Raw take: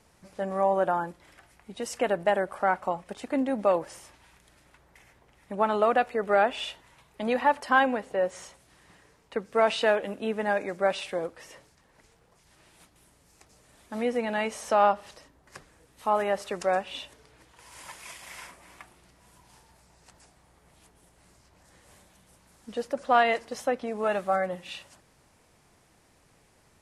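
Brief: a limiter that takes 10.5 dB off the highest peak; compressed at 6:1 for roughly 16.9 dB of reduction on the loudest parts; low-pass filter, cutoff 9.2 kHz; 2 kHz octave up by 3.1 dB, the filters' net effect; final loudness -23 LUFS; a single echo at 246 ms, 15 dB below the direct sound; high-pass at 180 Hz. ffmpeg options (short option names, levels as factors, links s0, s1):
-af "highpass=180,lowpass=9200,equalizer=f=2000:t=o:g=4,acompressor=threshold=0.02:ratio=6,alimiter=level_in=2.24:limit=0.0631:level=0:latency=1,volume=0.447,aecho=1:1:246:0.178,volume=9.44"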